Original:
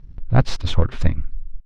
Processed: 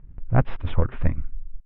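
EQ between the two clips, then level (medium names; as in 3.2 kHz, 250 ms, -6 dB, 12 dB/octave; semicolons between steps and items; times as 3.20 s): Savitzky-Golay filter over 25 samples; distance through air 420 m; bass shelf 440 Hz -4 dB; 0.0 dB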